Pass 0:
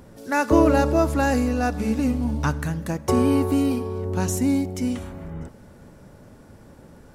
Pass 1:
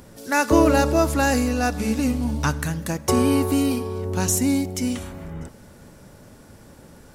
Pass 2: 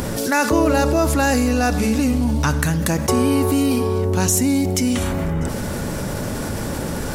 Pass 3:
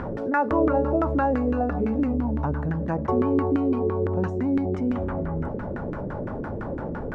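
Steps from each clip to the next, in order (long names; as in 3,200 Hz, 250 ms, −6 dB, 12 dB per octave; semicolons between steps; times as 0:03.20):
high-shelf EQ 2,300 Hz +8.5 dB
envelope flattener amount 70%; level −2 dB
auto-filter low-pass saw down 5.9 Hz 330–1,600 Hz; level −7.5 dB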